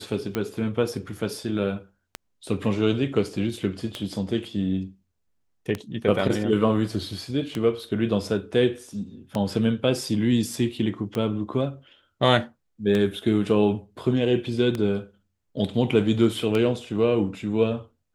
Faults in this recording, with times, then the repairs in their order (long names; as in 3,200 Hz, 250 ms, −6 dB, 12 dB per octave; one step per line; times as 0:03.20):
scratch tick 33 1/3 rpm −13 dBFS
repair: click removal